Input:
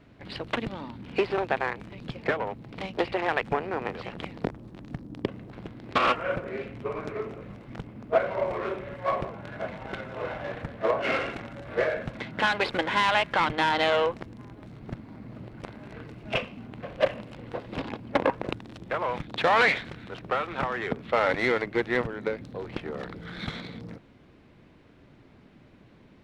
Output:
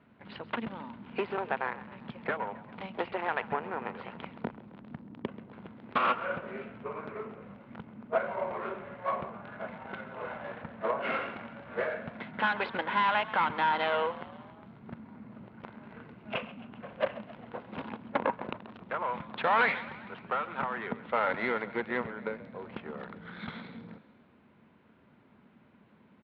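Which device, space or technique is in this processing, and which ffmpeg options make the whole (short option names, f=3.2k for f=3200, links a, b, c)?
frequency-shifting delay pedal into a guitar cabinet: -filter_complex "[0:a]asplit=6[a][b][c][d][e][f];[b]adelay=133,afreqshift=40,volume=-17dB[g];[c]adelay=266,afreqshift=80,volume=-21.7dB[h];[d]adelay=399,afreqshift=120,volume=-26.5dB[i];[e]adelay=532,afreqshift=160,volume=-31.2dB[j];[f]adelay=665,afreqshift=200,volume=-35.9dB[k];[a][g][h][i][j][k]amix=inputs=6:normalize=0,highpass=100,equalizer=f=120:t=q:w=4:g=-4,equalizer=f=220:t=q:w=4:g=7,equalizer=f=310:t=q:w=4:g=-5,equalizer=f=950:t=q:w=4:g=6,equalizer=f=1.4k:t=q:w=4:g=5,lowpass=f=3.5k:w=0.5412,lowpass=f=3.5k:w=1.3066,volume=-7dB"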